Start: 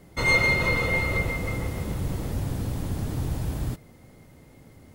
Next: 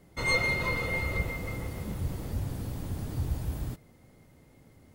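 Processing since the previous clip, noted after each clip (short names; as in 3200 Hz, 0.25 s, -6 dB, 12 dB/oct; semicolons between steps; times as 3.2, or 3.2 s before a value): spectral noise reduction 8 dB; gain +1.5 dB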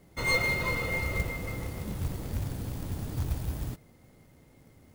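short-mantissa float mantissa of 2-bit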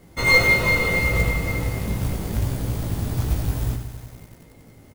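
on a send: early reflections 18 ms -4.5 dB, 77 ms -8.5 dB; on the sum: lo-fi delay 92 ms, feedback 80%, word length 8-bit, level -11.5 dB; gain +7 dB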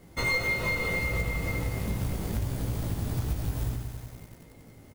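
compressor 4:1, threshold -23 dBFS, peak gain reduction 10.5 dB; gain -3 dB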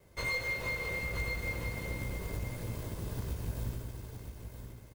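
minimum comb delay 1.9 ms; echo 0.97 s -8 dB; gain -6.5 dB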